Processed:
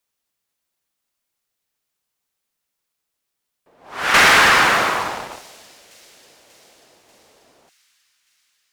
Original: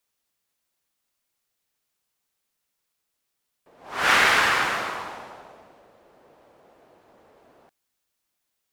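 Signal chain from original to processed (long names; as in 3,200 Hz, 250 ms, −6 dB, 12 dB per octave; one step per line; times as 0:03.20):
0:04.14–0:05.39: leveller curve on the samples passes 3
on a send: delay with a high-pass on its return 589 ms, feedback 62%, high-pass 5,100 Hz, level −18 dB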